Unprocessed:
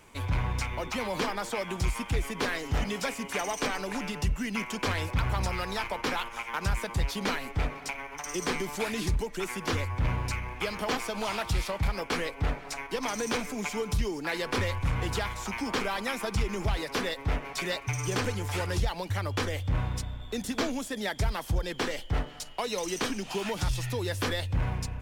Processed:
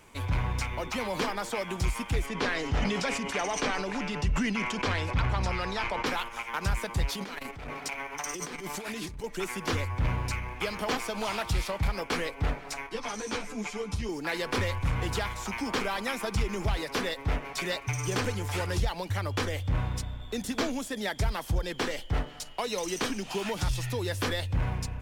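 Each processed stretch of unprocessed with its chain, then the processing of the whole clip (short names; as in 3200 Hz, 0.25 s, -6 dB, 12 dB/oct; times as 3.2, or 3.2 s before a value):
2.26–6.06 LPF 6100 Hz + sustainer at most 28 dB/s
7.09–9.24 low shelf 90 Hz -7.5 dB + negative-ratio compressor -36 dBFS + core saturation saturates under 250 Hz
12.89–14.09 LPF 9200 Hz + ensemble effect
whole clip: dry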